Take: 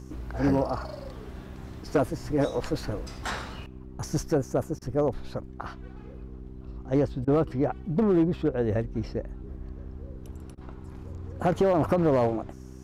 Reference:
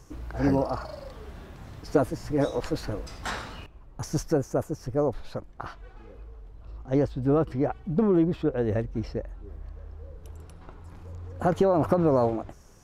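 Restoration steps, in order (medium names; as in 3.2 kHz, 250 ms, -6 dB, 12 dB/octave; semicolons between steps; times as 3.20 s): clip repair -16.5 dBFS; de-hum 64.2 Hz, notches 6; interpolate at 4.79/7.25/10.55 s, 24 ms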